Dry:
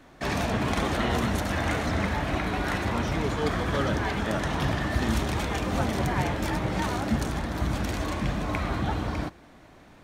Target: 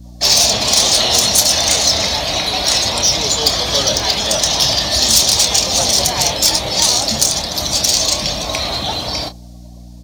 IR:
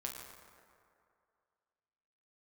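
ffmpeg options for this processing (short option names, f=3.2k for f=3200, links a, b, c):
-filter_complex "[0:a]afftdn=nr=17:nf=-47,firequalizer=gain_entry='entry(340,0);entry(590,10);entry(1500,-8);entry(4800,12);entry(8200,3)':delay=0.05:min_phase=1,acrossover=split=260|1600|3700[a][b][c][d];[d]acontrast=51[e];[a][b][c][e]amix=inputs=4:normalize=0,aeval=exprs='val(0)+0.02*(sin(2*PI*60*n/s)+sin(2*PI*2*60*n/s)/2+sin(2*PI*3*60*n/s)/3+sin(2*PI*4*60*n/s)/4+sin(2*PI*5*60*n/s)/5)':c=same,crystalizer=i=8.5:c=0,asoftclip=type=tanh:threshold=-8dB,asplit=2[f][g];[g]adelay=28,volume=-10.5dB[h];[f][h]amix=inputs=2:normalize=0,adynamicequalizer=threshold=0.0224:dfrequency=1500:dqfactor=0.7:tfrequency=1500:tqfactor=0.7:attack=5:release=100:ratio=0.375:range=2:mode=boostabove:tftype=highshelf"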